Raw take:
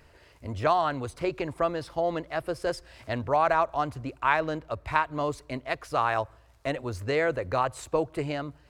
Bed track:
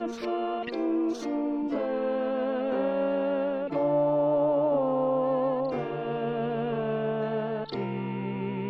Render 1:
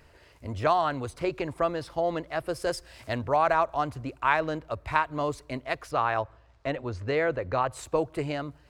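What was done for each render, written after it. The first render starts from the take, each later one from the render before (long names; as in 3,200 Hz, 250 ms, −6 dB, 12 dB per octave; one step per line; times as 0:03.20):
0:02.49–0:03.16: high-shelf EQ 5,600 Hz +7.5 dB
0:05.91–0:07.71: high-frequency loss of the air 110 metres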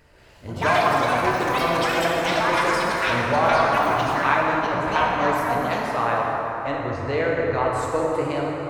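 delay with pitch and tempo change per echo 184 ms, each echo +7 semitones, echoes 3
dense smooth reverb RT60 4.2 s, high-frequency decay 0.45×, DRR −3.5 dB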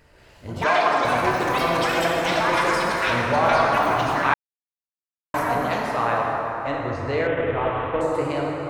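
0:00.64–0:01.05: band-pass filter 290–6,600 Hz
0:04.34–0:05.34: silence
0:07.27–0:08.01: variable-slope delta modulation 16 kbit/s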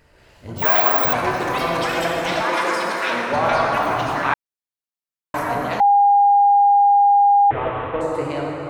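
0:00.58–0:01.13: bad sample-rate conversion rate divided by 2×, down filtered, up zero stuff
0:02.42–0:03.33: high-pass filter 200 Hz 24 dB per octave
0:05.80–0:07.51: beep over 810 Hz −10 dBFS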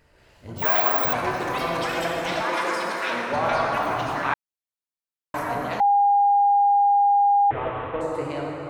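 level −4.5 dB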